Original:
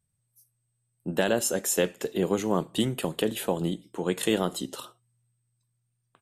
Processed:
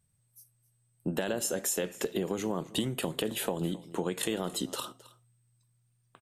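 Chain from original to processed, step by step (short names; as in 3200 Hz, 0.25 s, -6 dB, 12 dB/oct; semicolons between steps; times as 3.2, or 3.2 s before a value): limiter -15.5 dBFS, peak gain reduction 4 dB; compressor 5:1, threshold -33 dBFS, peak gain reduction 10.5 dB; echo 0.266 s -19.5 dB; gain +4.5 dB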